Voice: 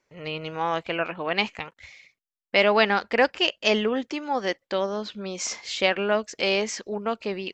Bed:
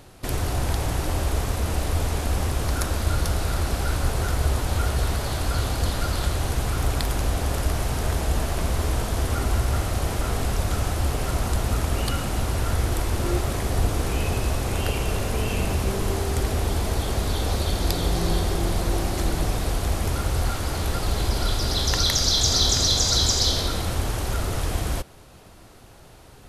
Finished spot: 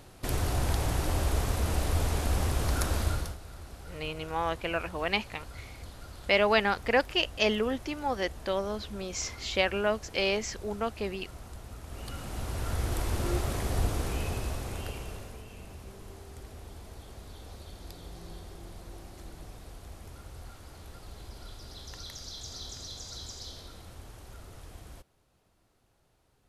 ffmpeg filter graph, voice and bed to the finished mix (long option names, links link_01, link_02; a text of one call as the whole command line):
ffmpeg -i stem1.wav -i stem2.wav -filter_complex "[0:a]adelay=3750,volume=-4.5dB[link_01];[1:a]volume=11dB,afade=type=out:start_time=3:duration=0.37:silence=0.141254,afade=type=in:start_time=11.82:duration=1.26:silence=0.177828,afade=type=out:start_time=13.81:duration=1.63:silence=0.158489[link_02];[link_01][link_02]amix=inputs=2:normalize=0" out.wav